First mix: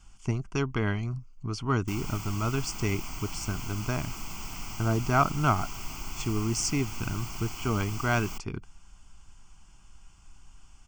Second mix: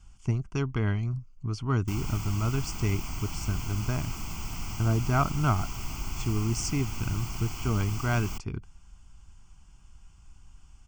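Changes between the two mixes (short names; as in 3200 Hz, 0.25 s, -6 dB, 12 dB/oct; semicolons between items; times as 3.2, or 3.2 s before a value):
speech -4.0 dB; master: add bell 67 Hz +8.5 dB 2.9 oct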